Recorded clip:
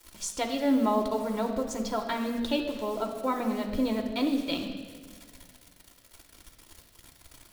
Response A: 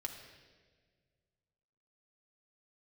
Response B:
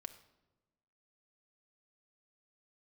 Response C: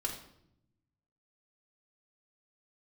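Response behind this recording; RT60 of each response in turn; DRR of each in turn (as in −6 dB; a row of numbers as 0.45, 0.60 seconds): A; 1.6 s, non-exponential decay, 0.75 s; 2.0, 7.0, −0.5 decibels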